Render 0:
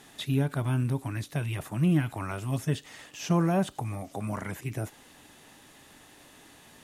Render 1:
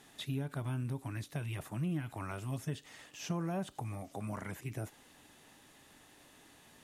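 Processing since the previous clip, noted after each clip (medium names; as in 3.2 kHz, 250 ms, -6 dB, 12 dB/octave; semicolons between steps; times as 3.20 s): compression 3:1, threshold -27 dBFS, peak gain reduction 6.5 dB; trim -6.5 dB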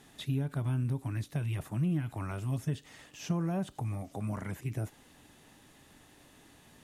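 bass shelf 270 Hz +7.5 dB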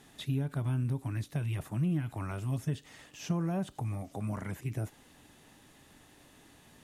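no audible change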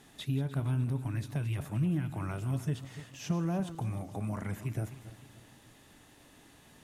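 backward echo that repeats 150 ms, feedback 60%, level -13 dB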